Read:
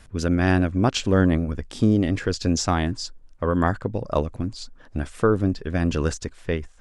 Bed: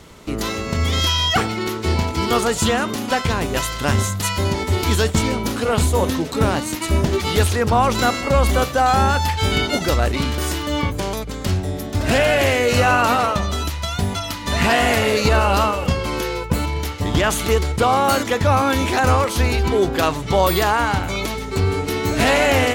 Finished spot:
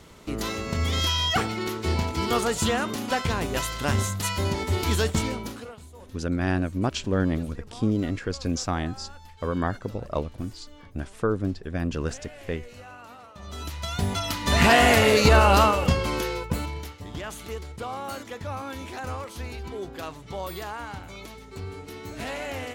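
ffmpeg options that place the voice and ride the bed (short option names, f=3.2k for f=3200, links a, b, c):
-filter_complex "[0:a]adelay=6000,volume=-5.5dB[a];[1:a]volume=22.5dB,afade=t=out:st=5.11:d=0.65:silence=0.0707946,afade=t=in:st=13.34:d=1.18:silence=0.0375837,afade=t=out:st=15.61:d=1.42:silence=0.141254[b];[a][b]amix=inputs=2:normalize=0"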